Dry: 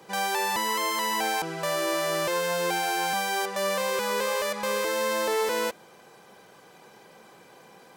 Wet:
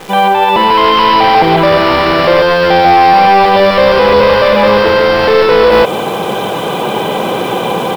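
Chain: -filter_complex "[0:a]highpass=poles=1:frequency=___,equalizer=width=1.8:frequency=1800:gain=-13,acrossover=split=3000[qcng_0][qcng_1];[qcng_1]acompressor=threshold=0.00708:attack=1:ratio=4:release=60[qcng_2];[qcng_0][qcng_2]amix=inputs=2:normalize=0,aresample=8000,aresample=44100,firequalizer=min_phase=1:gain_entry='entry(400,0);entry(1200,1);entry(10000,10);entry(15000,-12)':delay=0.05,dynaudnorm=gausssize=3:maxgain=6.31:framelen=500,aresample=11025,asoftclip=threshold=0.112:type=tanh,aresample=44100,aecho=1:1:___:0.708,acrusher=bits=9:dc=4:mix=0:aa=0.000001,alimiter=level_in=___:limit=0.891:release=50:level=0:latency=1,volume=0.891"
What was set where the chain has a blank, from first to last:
58, 144, 13.3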